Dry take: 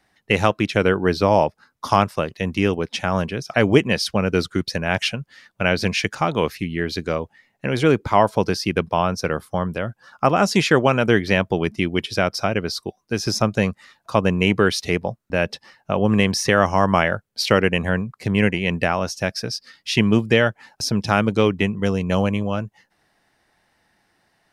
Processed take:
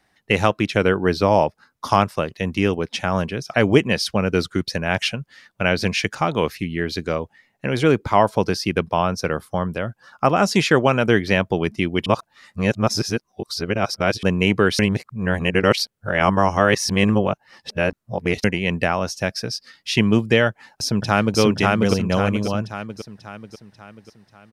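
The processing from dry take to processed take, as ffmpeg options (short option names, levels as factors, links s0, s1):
-filter_complex "[0:a]asplit=2[s0][s1];[s1]afade=t=in:st=20.48:d=0.01,afade=t=out:st=21.39:d=0.01,aecho=0:1:540|1080|1620|2160|2700|3240|3780:0.944061|0.47203|0.236015|0.118008|0.0590038|0.0295019|0.014751[s2];[s0][s2]amix=inputs=2:normalize=0,asplit=5[s3][s4][s5][s6][s7];[s3]atrim=end=12.062[s8];[s4]atrim=start=12.058:end=14.232,asetpts=PTS-STARTPTS,areverse[s9];[s5]atrim=start=14.228:end=14.792[s10];[s6]atrim=start=14.788:end=18.442,asetpts=PTS-STARTPTS,areverse[s11];[s7]atrim=start=18.438[s12];[s8][s9]acrossfade=d=0.004:c1=hsin:c2=hsin[s13];[s13][s10]acrossfade=d=0.004:c1=hsin:c2=hsin[s14];[s14][s11]acrossfade=d=0.004:c1=hsin:c2=hsin[s15];[s15][s12]acrossfade=d=0.004:c1=hsin:c2=hsin"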